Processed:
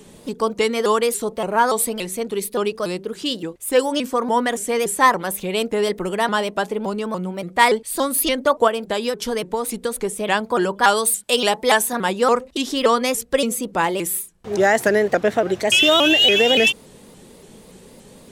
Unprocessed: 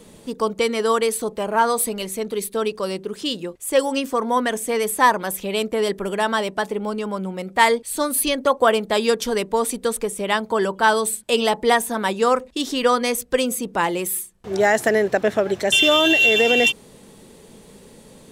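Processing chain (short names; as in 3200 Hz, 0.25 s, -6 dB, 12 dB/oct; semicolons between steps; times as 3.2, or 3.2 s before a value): 8.67–10.05 compressor, threshold -20 dBFS, peak gain reduction 8 dB; 10.84–11.93 tilt +1.5 dB/oct; shaped vibrato saw up 3.5 Hz, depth 160 cents; gain +1 dB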